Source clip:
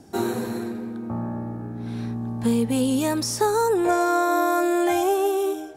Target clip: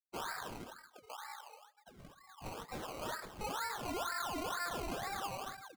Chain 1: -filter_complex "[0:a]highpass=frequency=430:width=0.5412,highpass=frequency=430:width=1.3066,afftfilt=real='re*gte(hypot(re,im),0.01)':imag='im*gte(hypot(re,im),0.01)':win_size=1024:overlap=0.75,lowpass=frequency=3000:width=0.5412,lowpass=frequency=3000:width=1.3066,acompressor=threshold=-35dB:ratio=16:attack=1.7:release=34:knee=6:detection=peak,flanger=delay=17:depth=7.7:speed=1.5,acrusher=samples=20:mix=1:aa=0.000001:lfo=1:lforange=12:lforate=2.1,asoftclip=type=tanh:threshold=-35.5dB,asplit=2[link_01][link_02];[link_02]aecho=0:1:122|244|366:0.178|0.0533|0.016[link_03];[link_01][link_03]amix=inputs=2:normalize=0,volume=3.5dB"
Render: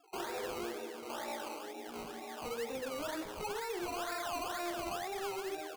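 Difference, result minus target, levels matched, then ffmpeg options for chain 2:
500 Hz band +5.5 dB; echo-to-direct +6.5 dB
-filter_complex "[0:a]highpass=frequency=1100:width=0.5412,highpass=frequency=1100:width=1.3066,afftfilt=real='re*gte(hypot(re,im),0.01)':imag='im*gte(hypot(re,im),0.01)':win_size=1024:overlap=0.75,lowpass=frequency=3000:width=0.5412,lowpass=frequency=3000:width=1.3066,acompressor=threshold=-35dB:ratio=16:attack=1.7:release=34:knee=6:detection=peak,flanger=delay=17:depth=7.7:speed=1.5,acrusher=samples=20:mix=1:aa=0.000001:lfo=1:lforange=12:lforate=2.1,asoftclip=type=tanh:threshold=-35.5dB,asplit=2[link_01][link_02];[link_02]aecho=0:1:122|244:0.0841|0.0252[link_03];[link_01][link_03]amix=inputs=2:normalize=0,volume=3.5dB"

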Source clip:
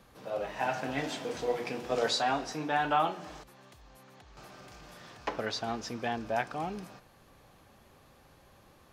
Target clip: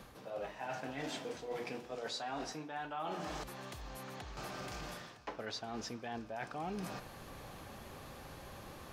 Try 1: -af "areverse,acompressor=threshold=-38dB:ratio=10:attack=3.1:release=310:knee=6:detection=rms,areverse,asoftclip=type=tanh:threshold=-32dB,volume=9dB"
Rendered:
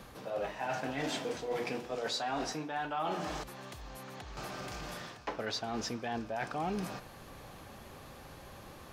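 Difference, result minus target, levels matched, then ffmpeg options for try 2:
downward compressor: peak gain reduction −6.5 dB
-af "areverse,acompressor=threshold=-45dB:ratio=10:attack=3.1:release=310:knee=6:detection=rms,areverse,asoftclip=type=tanh:threshold=-32dB,volume=9dB"

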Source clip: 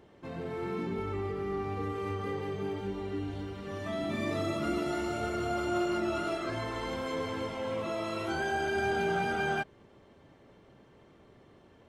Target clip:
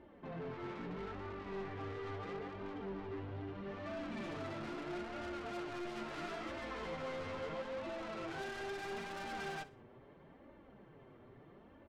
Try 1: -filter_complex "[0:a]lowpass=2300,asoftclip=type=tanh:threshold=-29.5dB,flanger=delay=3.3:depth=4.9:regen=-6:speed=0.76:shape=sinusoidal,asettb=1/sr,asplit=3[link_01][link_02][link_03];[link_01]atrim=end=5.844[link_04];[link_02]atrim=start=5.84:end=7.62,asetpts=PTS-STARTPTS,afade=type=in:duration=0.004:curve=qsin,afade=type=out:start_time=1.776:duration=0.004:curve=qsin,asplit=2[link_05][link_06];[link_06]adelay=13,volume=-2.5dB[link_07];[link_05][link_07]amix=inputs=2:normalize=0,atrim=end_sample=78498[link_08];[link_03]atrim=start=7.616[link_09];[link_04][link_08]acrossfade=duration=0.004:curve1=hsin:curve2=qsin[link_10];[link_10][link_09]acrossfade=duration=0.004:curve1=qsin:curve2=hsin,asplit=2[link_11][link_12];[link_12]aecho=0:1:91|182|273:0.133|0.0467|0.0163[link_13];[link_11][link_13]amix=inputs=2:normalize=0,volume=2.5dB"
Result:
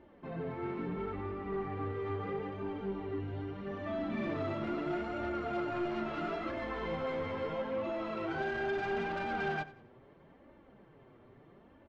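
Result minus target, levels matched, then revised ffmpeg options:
echo 29 ms late; soft clipping: distortion −9 dB
-filter_complex "[0:a]lowpass=2300,asoftclip=type=tanh:threshold=-41dB,flanger=delay=3.3:depth=4.9:regen=-6:speed=0.76:shape=sinusoidal,asettb=1/sr,asplit=3[link_01][link_02][link_03];[link_01]atrim=end=5.844[link_04];[link_02]atrim=start=5.84:end=7.62,asetpts=PTS-STARTPTS,afade=type=in:duration=0.004:curve=qsin,afade=type=out:start_time=1.776:duration=0.004:curve=qsin,asplit=2[link_05][link_06];[link_06]adelay=13,volume=-2.5dB[link_07];[link_05][link_07]amix=inputs=2:normalize=0,atrim=end_sample=78498[link_08];[link_03]atrim=start=7.616[link_09];[link_04][link_08]acrossfade=duration=0.004:curve1=hsin:curve2=qsin[link_10];[link_10][link_09]acrossfade=duration=0.004:curve1=qsin:curve2=hsin,asplit=2[link_11][link_12];[link_12]aecho=0:1:62|124|186:0.133|0.0467|0.0163[link_13];[link_11][link_13]amix=inputs=2:normalize=0,volume=2.5dB"

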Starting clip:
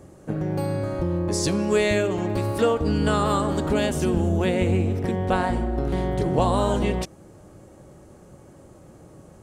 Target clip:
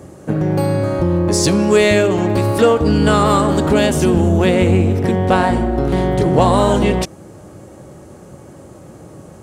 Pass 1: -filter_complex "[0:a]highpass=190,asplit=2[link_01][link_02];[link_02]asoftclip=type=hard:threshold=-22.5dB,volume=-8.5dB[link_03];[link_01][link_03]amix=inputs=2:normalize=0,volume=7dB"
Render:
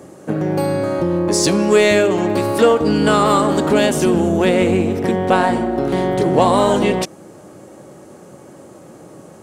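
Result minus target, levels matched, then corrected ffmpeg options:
125 Hz band −5.5 dB
-filter_complex "[0:a]highpass=67,asplit=2[link_01][link_02];[link_02]asoftclip=type=hard:threshold=-22.5dB,volume=-8.5dB[link_03];[link_01][link_03]amix=inputs=2:normalize=0,volume=7dB"

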